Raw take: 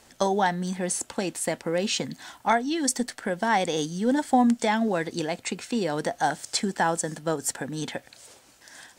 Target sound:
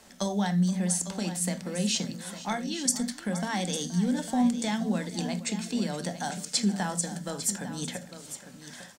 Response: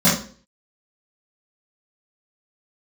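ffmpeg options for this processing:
-filter_complex "[0:a]acrossover=split=160|3000[a][b][c];[b]acompressor=threshold=-52dB:ratio=1.5[d];[a][d][c]amix=inputs=3:normalize=0,aecho=1:1:474|852:0.15|0.251,asplit=2[e][f];[1:a]atrim=start_sample=2205,afade=t=out:st=0.14:d=0.01,atrim=end_sample=6615[g];[f][g]afir=irnorm=-1:irlink=0,volume=-29dB[h];[e][h]amix=inputs=2:normalize=0"

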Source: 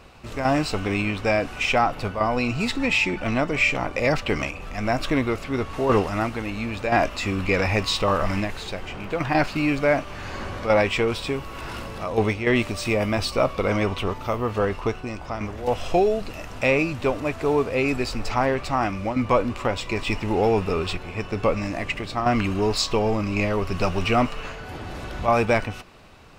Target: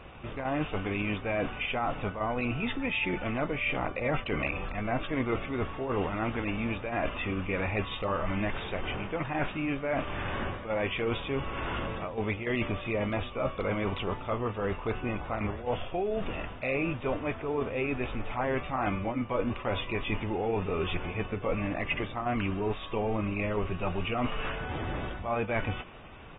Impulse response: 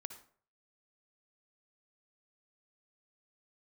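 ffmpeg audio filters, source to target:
-af "areverse,acompressor=threshold=-28dB:ratio=8,areverse,aresample=8000,aresample=44100" -ar 32000 -c:a aac -b:a 16k

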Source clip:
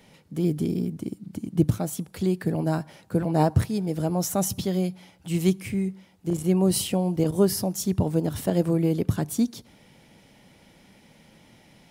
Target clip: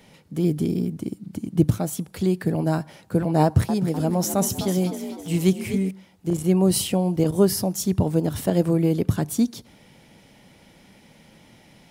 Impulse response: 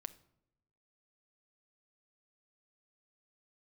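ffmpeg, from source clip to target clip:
-filter_complex "[0:a]asettb=1/sr,asplit=3[a][b][c];[a]atrim=end=3.434[d];[b]atrim=start=3.43:end=5.91,asetpts=PTS-STARTPTS,afade=t=in:d=0.004:c=qsin,afade=t=out:st=2.476:d=0.004:c=qsin,asplit=6[e][f][g][h][i][j];[f]adelay=254,afreqshift=53,volume=-10.5dB[k];[g]adelay=508,afreqshift=106,volume=-16.9dB[l];[h]adelay=762,afreqshift=159,volume=-23.3dB[m];[i]adelay=1016,afreqshift=212,volume=-29.6dB[n];[j]adelay=1270,afreqshift=265,volume=-36dB[o];[e][k][l][m][n][o]amix=inputs=6:normalize=0,atrim=end_sample=109368[p];[c]atrim=start=5.906[q];[d][p]acrossfade=d=0.004:c1=hsin:c2=qsin[r];[r][q]acrossfade=d=0.004:c1=qsin:c2=hsin,volume=2.5dB"

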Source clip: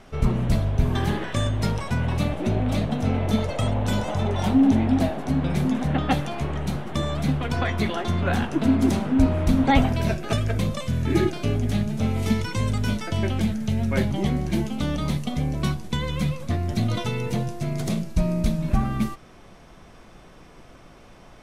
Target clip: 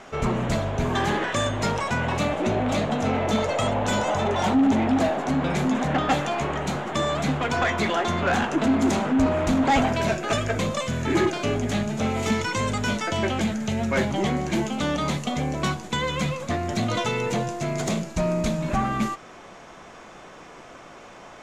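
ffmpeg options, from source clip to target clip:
-filter_complex "[0:a]asplit=2[a][b];[b]highpass=f=720:p=1,volume=22dB,asoftclip=type=tanh:threshold=-5dB[c];[a][c]amix=inputs=2:normalize=0,lowpass=f=1.9k:p=1,volume=-6dB,equalizer=f=7k:t=o:w=0.36:g=12,volume=-5.5dB"

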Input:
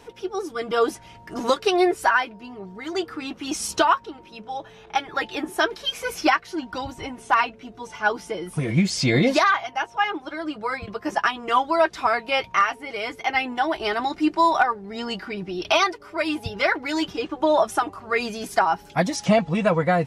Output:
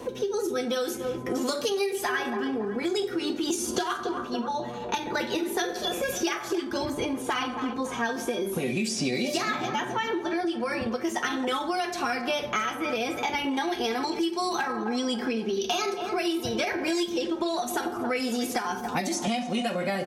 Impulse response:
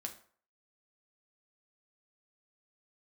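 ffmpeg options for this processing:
-filter_complex "[0:a]equalizer=f=300:w=0.45:g=15,asplit=2[a][b];[b]adelay=274,lowpass=f=2.6k:p=1,volume=-17dB,asplit=2[c][d];[d]adelay=274,lowpass=f=2.6k:p=1,volume=0.43,asplit=2[e][f];[f]adelay=274,lowpass=f=2.6k:p=1,volume=0.43,asplit=2[g][h];[h]adelay=274,lowpass=f=2.6k:p=1,volume=0.43[i];[c][e][g][i]amix=inputs=4:normalize=0[j];[a][j]amix=inputs=2:normalize=0[k];[1:a]atrim=start_sample=2205[l];[k][l]afir=irnorm=-1:irlink=0,acrossover=split=1800[m][n];[m]acompressor=threshold=-21dB:ratio=4[o];[o][n]amix=inputs=2:normalize=0,asetrate=48091,aresample=44100,atempo=0.917004,highshelf=f=6.2k:g=7,acrossover=split=270|2200|7500[p][q][r][s];[p]acompressor=threshold=-39dB:ratio=4[t];[q]acompressor=threshold=-33dB:ratio=4[u];[r]acompressor=threshold=-37dB:ratio=4[v];[s]acompressor=threshold=-44dB:ratio=4[w];[t][u][v][w]amix=inputs=4:normalize=0,volume=3dB"

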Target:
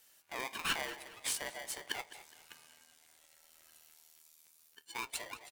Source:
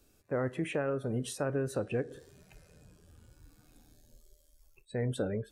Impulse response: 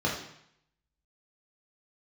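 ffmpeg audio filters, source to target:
-filter_complex "[0:a]highpass=f=2k:t=q:w=2.6,highshelf=f=7.9k:g=9.5,asplit=2[a][b];[b]adelay=208,lowpass=f=3.2k:p=1,volume=-14dB,asplit=2[c][d];[d]adelay=208,lowpass=f=3.2k:p=1,volume=0.44,asplit=2[e][f];[f]adelay=208,lowpass=f=3.2k:p=1,volume=0.44,asplit=2[g][h];[h]adelay=208,lowpass=f=3.2k:p=1,volume=0.44[i];[a][c][e][g][i]amix=inputs=5:normalize=0,afreqshift=-230,aeval=exprs='val(0)*sgn(sin(2*PI*670*n/s))':c=same,volume=1dB"

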